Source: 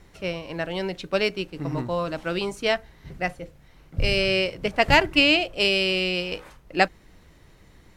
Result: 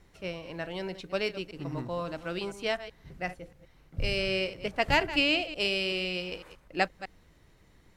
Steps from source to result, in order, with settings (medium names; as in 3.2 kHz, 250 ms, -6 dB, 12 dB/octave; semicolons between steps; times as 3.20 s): chunks repeated in reverse 126 ms, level -13.5 dB; trim -7.5 dB